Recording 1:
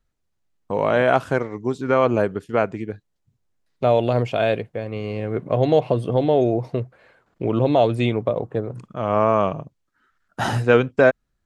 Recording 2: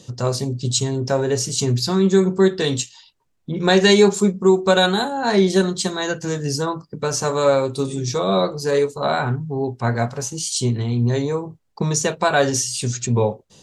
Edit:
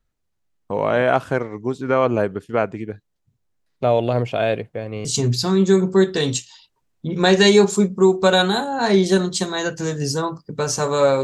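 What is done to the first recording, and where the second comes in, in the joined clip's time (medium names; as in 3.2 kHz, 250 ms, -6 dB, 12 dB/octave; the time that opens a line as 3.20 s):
recording 1
5.05 s: go over to recording 2 from 1.49 s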